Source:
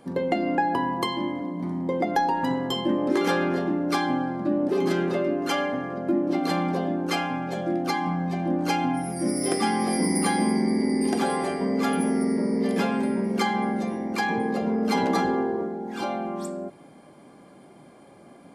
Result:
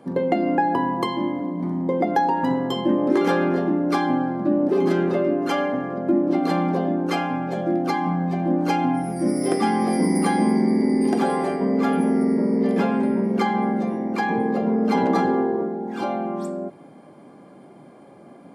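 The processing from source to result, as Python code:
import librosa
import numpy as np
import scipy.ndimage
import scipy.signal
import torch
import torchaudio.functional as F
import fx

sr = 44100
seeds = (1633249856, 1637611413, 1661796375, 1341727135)

y = fx.high_shelf(x, sr, hz=4500.0, db=-4.5, at=(11.56, 15.16))
y = scipy.signal.sosfilt(scipy.signal.butter(2, 110.0, 'highpass', fs=sr, output='sos'), y)
y = fx.high_shelf(y, sr, hz=2000.0, db=-9.5)
y = y * 10.0 ** (4.5 / 20.0)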